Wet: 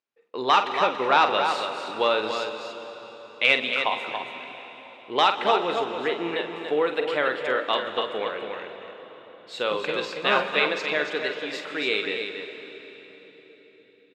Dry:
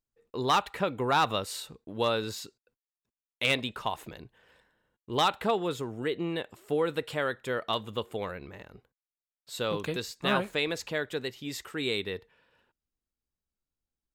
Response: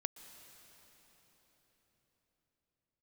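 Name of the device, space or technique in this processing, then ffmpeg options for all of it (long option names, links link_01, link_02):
station announcement: -filter_complex "[0:a]highpass=380,lowpass=3900,equalizer=frequency=2400:width_type=o:width=0.51:gain=4,aecho=1:1:46.65|282.8:0.355|0.447[link_01];[1:a]atrim=start_sample=2205[link_02];[link_01][link_02]afir=irnorm=-1:irlink=0,volume=7.5dB"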